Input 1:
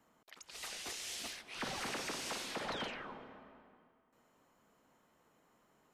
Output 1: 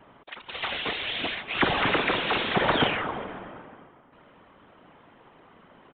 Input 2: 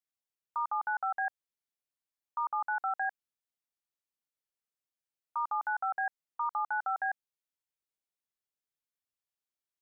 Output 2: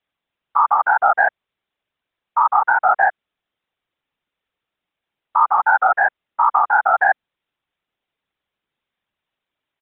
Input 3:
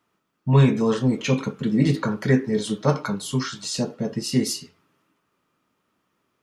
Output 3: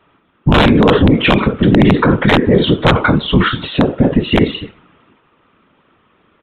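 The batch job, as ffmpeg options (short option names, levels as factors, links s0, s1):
-af "afftfilt=real='hypot(re,im)*cos(2*PI*random(0))':imag='hypot(re,im)*sin(2*PI*random(1))':win_size=512:overlap=0.75,aresample=8000,aeval=exprs='(mod(7.08*val(0)+1,2)-1)/7.08':c=same,aresample=44100,aeval=exprs='0.237*(cos(1*acos(clip(val(0)/0.237,-1,1)))-cos(1*PI/2))+0.00944*(cos(3*acos(clip(val(0)/0.237,-1,1)))-cos(3*PI/2))+0.0106*(cos(5*acos(clip(val(0)/0.237,-1,1)))-cos(5*PI/2))':c=same,alimiter=level_in=15:limit=0.891:release=50:level=0:latency=1,volume=0.891"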